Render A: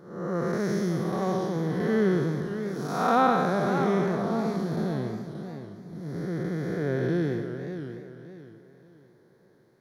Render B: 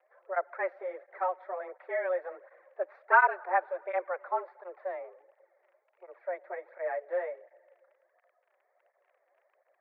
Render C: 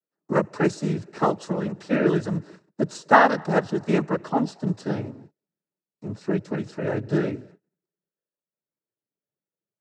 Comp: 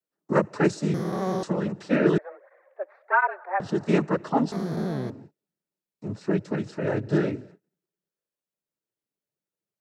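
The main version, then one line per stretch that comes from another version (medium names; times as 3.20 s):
C
0.94–1.43 s: from A
2.18–3.60 s: from B
4.52–5.10 s: from A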